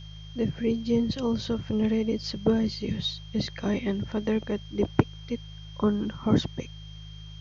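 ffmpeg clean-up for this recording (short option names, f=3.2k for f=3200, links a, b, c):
-af "bandreject=f=52.2:t=h:w=4,bandreject=f=104.4:t=h:w=4,bandreject=f=156.6:t=h:w=4,bandreject=f=3.2k:w=30,agate=range=-21dB:threshold=-35dB"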